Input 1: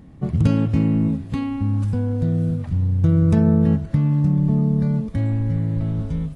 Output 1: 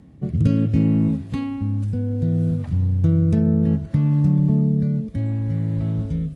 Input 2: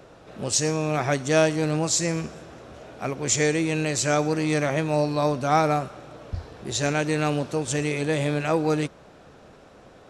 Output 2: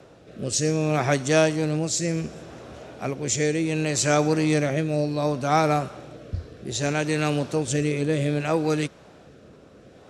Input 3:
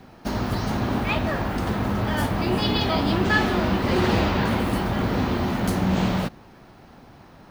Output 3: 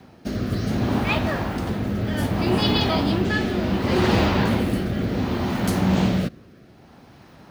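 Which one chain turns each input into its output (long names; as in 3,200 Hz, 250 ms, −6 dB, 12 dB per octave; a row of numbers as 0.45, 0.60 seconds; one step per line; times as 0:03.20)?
high-pass filter 57 Hz
parametric band 1,100 Hz −2 dB 1.9 octaves
rotating-speaker cabinet horn 0.65 Hz
normalise the peak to −6 dBFS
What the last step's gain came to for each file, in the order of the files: +1.0, +3.0, +3.0 decibels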